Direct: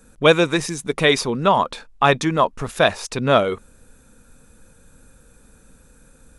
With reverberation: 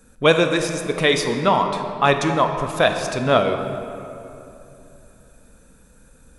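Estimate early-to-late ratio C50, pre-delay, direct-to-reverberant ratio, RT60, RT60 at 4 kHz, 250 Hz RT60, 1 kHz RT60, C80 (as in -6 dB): 6.5 dB, 14 ms, 5.5 dB, 2.9 s, 1.6 s, 3.3 s, 2.8 s, 7.5 dB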